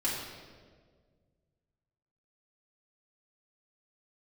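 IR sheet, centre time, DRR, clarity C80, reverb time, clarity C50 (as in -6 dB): 77 ms, -8.5 dB, 3.0 dB, 1.7 s, 1.0 dB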